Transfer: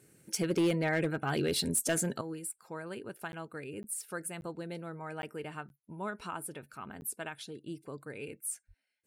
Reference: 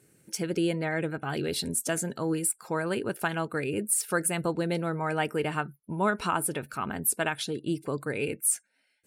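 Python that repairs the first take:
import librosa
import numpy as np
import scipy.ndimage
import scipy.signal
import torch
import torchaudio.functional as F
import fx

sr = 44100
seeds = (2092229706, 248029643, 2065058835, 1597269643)

y = fx.fix_declip(x, sr, threshold_db=-23.0)
y = fx.highpass(y, sr, hz=140.0, slope=24, at=(8.67, 8.79), fade=0.02)
y = fx.fix_interpolate(y, sr, at_s=(3.32, 3.83, 4.41, 5.22, 5.69, 7.01), length_ms=11.0)
y = fx.gain(y, sr, db=fx.steps((0.0, 0.0), (2.21, 12.0)))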